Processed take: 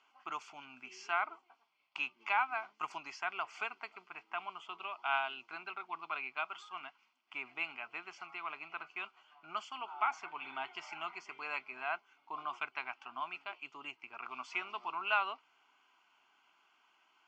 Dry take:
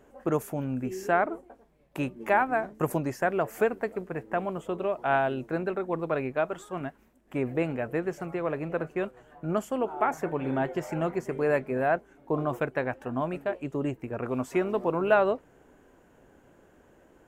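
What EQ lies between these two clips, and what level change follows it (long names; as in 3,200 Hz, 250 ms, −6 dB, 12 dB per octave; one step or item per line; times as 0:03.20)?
high-pass filter 1,200 Hz 12 dB per octave
transistor ladder low-pass 4,300 Hz, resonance 70%
phaser with its sweep stopped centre 2,600 Hz, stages 8
+12.0 dB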